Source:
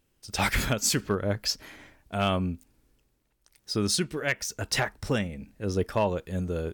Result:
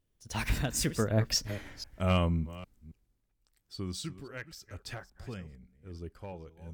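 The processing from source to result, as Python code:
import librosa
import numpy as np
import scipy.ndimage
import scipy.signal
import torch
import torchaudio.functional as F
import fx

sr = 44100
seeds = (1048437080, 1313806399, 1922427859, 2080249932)

y = fx.reverse_delay(x, sr, ms=247, wet_db=-13.5)
y = fx.doppler_pass(y, sr, speed_mps=37, closest_m=16.0, pass_at_s=1.57)
y = fx.low_shelf(y, sr, hz=140.0, db=10.0)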